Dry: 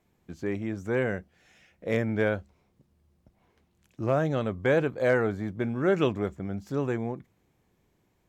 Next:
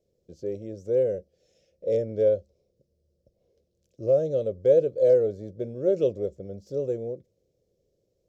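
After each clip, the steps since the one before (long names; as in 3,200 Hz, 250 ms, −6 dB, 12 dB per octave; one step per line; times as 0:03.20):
drawn EQ curve 120 Hz 0 dB, 270 Hz −5 dB, 540 Hz +15 dB, 860 Hz −19 dB, 1,900 Hz −18 dB, 5,300 Hz +5 dB, 9,400 Hz −6 dB
level −5.5 dB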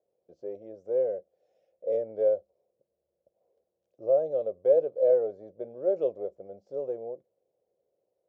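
resonant band-pass 810 Hz, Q 3.2
level +7 dB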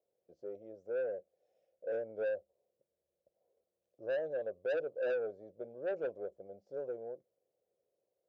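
soft clipping −24.5 dBFS, distortion −9 dB
level −6 dB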